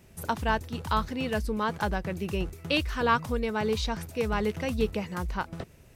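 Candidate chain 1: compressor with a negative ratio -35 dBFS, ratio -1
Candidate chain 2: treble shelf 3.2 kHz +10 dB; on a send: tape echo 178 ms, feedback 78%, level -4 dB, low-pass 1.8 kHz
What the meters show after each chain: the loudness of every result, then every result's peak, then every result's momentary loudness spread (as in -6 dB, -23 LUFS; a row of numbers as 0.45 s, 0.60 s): -35.5 LUFS, -27.0 LUFS; -17.0 dBFS, -7.5 dBFS; 3 LU, 6 LU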